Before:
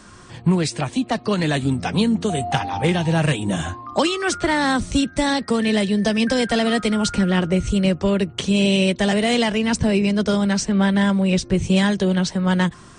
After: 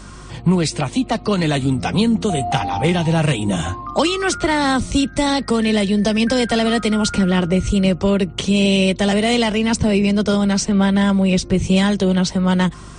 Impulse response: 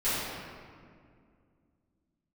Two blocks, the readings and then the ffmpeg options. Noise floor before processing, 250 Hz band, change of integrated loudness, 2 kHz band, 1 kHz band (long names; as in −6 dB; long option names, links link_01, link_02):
−43 dBFS, +2.5 dB, +2.5 dB, +1.0 dB, +2.5 dB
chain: -filter_complex "[0:a]bandreject=frequency=1700:width=9.6,asplit=2[link_01][link_02];[link_02]alimiter=limit=-19.5dB:level=0:latency=1:release=141,volume=-2dB[link_03];[link_01][link_03]amix=inputs=2:normalize=0,aeval=exprs='val(0)+0.0126*(sin(2*PI*50*n/s)+sin(2*PI*2*50*n/s)/2+sin(2*PI*3*50*n/s)/3+sin(2*PI*4*50*n/s)/4+sin(2*PI*5*50*n/s)/5)':channel_layout=same"